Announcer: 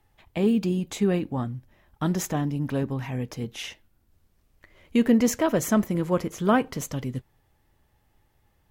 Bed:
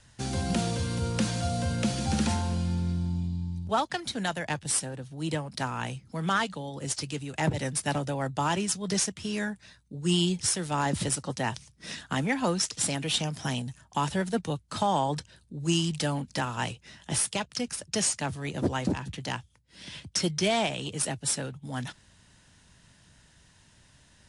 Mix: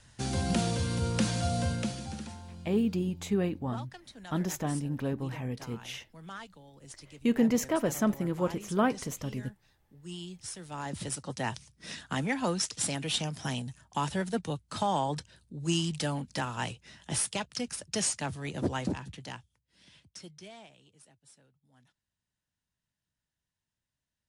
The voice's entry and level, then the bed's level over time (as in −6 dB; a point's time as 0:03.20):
2.30 s, −5.5 dB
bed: 0:01.66 −0.5 dB
0:02.32 −17 dB
0:10.24 −17 dB
0:11.45 −3 dB
0:18.80 −3 dB
0:21.13 −30.5 dB